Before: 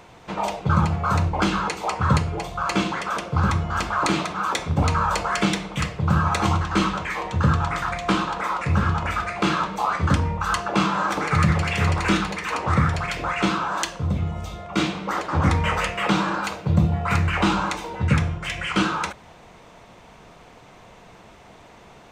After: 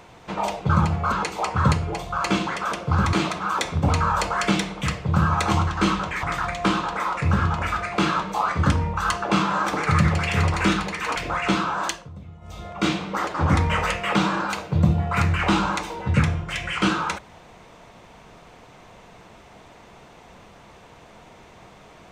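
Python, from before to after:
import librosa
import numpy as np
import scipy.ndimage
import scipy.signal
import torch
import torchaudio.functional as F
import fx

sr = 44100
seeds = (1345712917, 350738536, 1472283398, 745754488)

y = fx.edit(x, sr, fx.cut(start_s=1.12, length_s=0.45),
    fx.cut(start_s=3.58, length_s=0.49),
    fx.cut(start_s=7.17, length_s=0.5),
    fx.cut(start_s=12.6, length_s=0.5),
    fx.fade_down_up(start_s=13.79, length_s=0.81, db=-16.5, fade_s=0.25), tone=tone)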